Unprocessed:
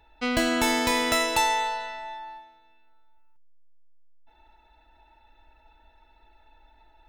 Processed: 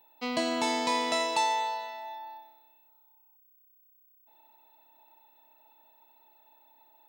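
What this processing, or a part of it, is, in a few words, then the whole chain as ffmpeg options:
old television with a line whistle: -af "highpass=f=160:w=0.5412,highpass=f=160:w=1.3066,equalizer=f=650:t=q:w=4:g=4,equalizer=f=1000:t=q:w=4:g=7,equalizer=f=1500:t=q:w=4:g=-10,equalizer=f=4400:t=q:w=4:g=5,lowpass=f=8800:w=0.5412,lowpass=f=8800:w=1.3066,aeval=exprs='val(0)+0.002*sin(2*PI*15734*n/s)':c=same,volume=0.473"

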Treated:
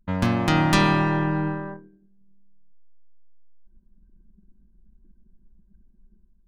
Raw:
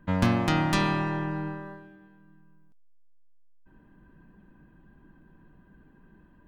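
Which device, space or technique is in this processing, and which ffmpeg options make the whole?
voice memo with heavy noise removal: -af "anlmdn=0.251,dynaudnorm=f=190:g=5:m=2.51"

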